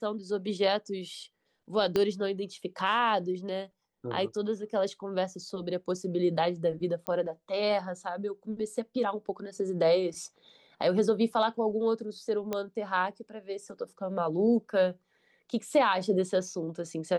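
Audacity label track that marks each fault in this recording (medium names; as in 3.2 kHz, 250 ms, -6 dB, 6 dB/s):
1.960000	1.960000	pop -14 dBFS
7.070000	7.070000	pop -17 dBFS
12.530000	12.530000	pop -17 dBFS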